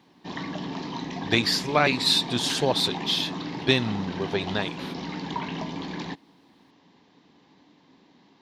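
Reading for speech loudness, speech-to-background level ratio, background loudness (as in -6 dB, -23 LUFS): -24.5 LUFS, 9.5 dB, -34.0 LUFS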